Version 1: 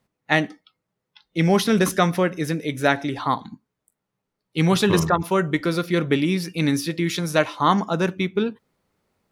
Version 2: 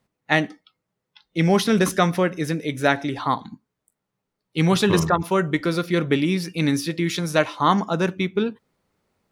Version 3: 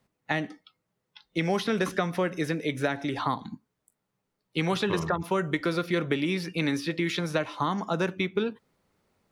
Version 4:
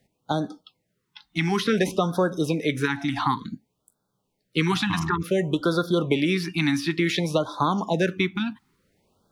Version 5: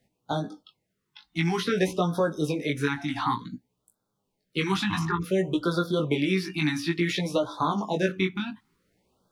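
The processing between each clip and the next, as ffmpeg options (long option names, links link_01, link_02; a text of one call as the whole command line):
ffmpeg -i in.wav -af "equalizer=frequency=12000:width_type=o:width=0.27:gain=-3.5" out.wav
ffmpeg -i in.wav -filter_complex "[0:a]alimiter=limit=-9dB:level=0:latency=1:release=298,acrossover=split=370|4000[link_01][link_02][link_03];[link_01]acompressor=threshold=-31dB:ratio=4[link_04];[link_02]acompressor=threshold=-26dB:ratio=4[link_05];[link_03]acompressor=threshold=-48dB:ratio=4[link_06];[link_04][link_05][link_06]amix=inputs=3:normalize=0" out.wav
ffmpeg -i in.wav -af "afftfilt=real='re*(1-between(b*sr/1024,460*pow(2400/460,0.5+0.5*sin(2*PI*0.56*pts/sr))/1.41,460*pow(2400/460,0.5+0.5*sin(2*PI*0.56*pts/sr))*1.41))':imag='im*(1-between(b*sr/1024,460*pow(2400/460,0.5+0.5*sin(2*PI*0.56*pts/sr))/1.41,460*pow(2400/460,0.5+0.5*sin(2*PI*0.56*pts/sr))*1.41))':win_size=1024:overlap=0.75,volume=5dB" out.wav
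ffmpeg -i in.wav -af "flanger=delay=16:depth=5.1:speed=0.55" out.wav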